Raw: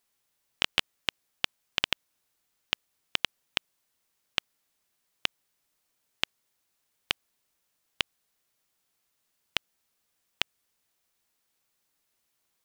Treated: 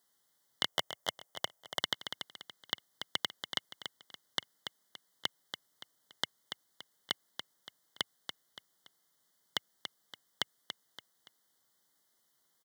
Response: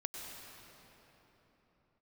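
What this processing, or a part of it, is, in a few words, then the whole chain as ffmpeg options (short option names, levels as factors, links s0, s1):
PA system with an anti-feedback notch: -filter_complex "[0:a]aecho=1:1:285|570|855:0.211|0.0761|0.0274,asettb=1/sr,asplit=3[s0][s1][s2];[s0]atrim=end=0.684[s3];[s1]atrim=start=0.68:end=1.79,asetpts=PTS-STARTPTS,afade=t=in:d=0.004:c=qsin,afade=t=out:st=1.106:d=0.004:c=qsin,equalizer=f=250:t=o:w=0.67:g=-10,equalizer=f=630:t=o:w=0.67:g=7,equalizer=f=1600:t=o:w=0.67:g=-5,equalizer=f=4000:t=o:w=0.67:g=-8[s4];[s2]atrim=start=1.786[s5];[s3][s4]acrossfade=d=0.004:c1=hsin:c2=qsin[s6];[s6][s5]acrossfade=d=0.004:c1=qsin:c2=hsin,highpass=f=110:w=0.5412,highpass=f=110:w=1.3066,asuperstop=centerf=2500:order=20:qfactor=3.1,alimiter=limit=0.158:level=0:latency=1:release=37,volume=1.26"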